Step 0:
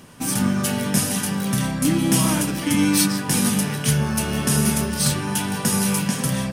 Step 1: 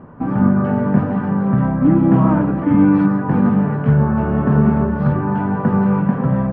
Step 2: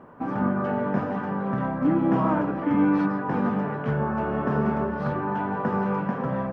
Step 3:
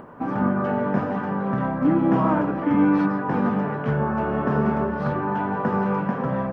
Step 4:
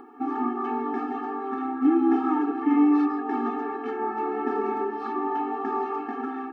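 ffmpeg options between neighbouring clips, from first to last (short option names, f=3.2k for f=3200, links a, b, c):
-af "lowpass=f=1.3k:w=0.5412,lowpass=f=1.3k:w=1.3066,volume=7dB"
-af "bass=f=250:g=-12,treble=f=4k:g=11,volume=-3.5dB"
-af "acompressor=mode=upward:threshold=-41dB:ratio=2.5,volume=2.5dB"
-af "afftfilt=real='re*eq(mod(floor(b*sr/1024/230),2),1)':imag='im*eq(mod(floor(b*sr/1024/230),2),1)':win_size=1024:overlap=0.75"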